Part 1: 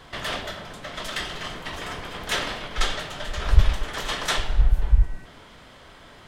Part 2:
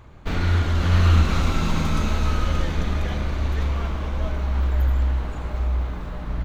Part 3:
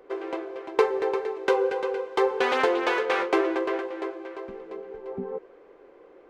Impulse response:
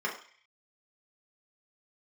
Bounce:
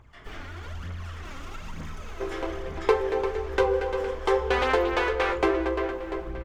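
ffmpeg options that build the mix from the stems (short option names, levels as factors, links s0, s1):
-filter_complex "[0:a]agate=range=0.0224:threshold=0.00794:ratio=3:detection=peak,acrossover=split=580[s0][s1];[s0]aeval=exprs='val(0)*(1-0.7/2+0.7/2*cos(2*PI*4.1*n/s))':c=same[s2];[s1]aeval=exprs='val(0)*(1-0.7/2-0.7/2*cos(2*PI*4.1*n/s))':c=same[s3];[s2][s3]amix=inputs=2:normalize=0,volume=0.158,asplit=2[s4][s5];[s5]volume=0.668[s6];[1:a]lowshelf=f=480:g=-5.5,alimiter=limit=0.0944:level=0:latency=1:release=18,aphaser=in_gain=1:out_gain=1:delay=3.8:decay=0.62:speed=1.1:type=triangular,volume=0.335[s7];[2:a]adelay=2100,volume=0.944[s8];[s4][s7]amix=inputs=2:normalize=0,equalizer=f=4000:t=o:w=0.23:g=-9,alimiter=level_in=1.68:limit=0.0631:level=0:latency=1:release=425,volume=0.596,volume=1[s9];[3:a]atrim=start_sample=2205[s10];[s6][s10]afir=irnorm=-1:irlink=0[s11];[s8][s9][s11]amix=inputs=3:normalize=0"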